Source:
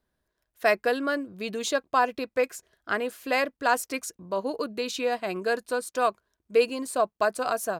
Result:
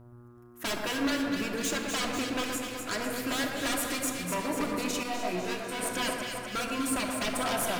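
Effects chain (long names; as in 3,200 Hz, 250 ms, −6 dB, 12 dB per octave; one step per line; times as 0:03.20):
graphic EQ with 10 bands 125 Hz +4 dB, 250 Hz −5 dB, 500 Hz −9 dB, 4,000 Hz −12 dB
in parallel at −2.5 dB: downward compressor, threshold −35 dBFS, peak gain reduction 14 dB
on the sum: hum with harmonics 120 Hz, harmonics 12, −52 dBFS −8 dB per octave
wave folding −28 dBFS
delay that swaps between a low-pass and a high-pass 124 ms, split 1,600 Hz, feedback 80%, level −4 dB
on a send at −3 dB: convolution reverb RT60 1.9 s, pre-delay 3 ms
0:05.03–0:05.79: on the sum: micro pitch shift up and down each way 15 cents
level +1 dB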